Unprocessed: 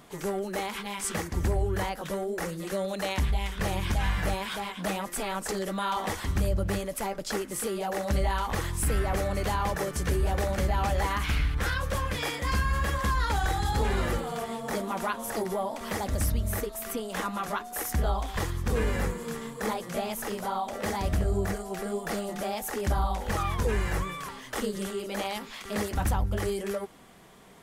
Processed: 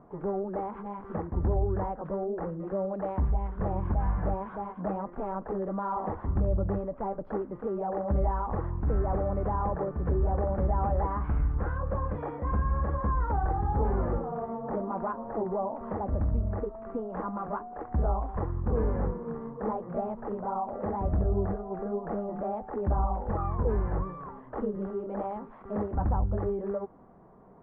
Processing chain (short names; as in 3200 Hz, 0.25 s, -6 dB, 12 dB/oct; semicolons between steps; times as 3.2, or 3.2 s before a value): LPF 1100 Hz 24 dB/oct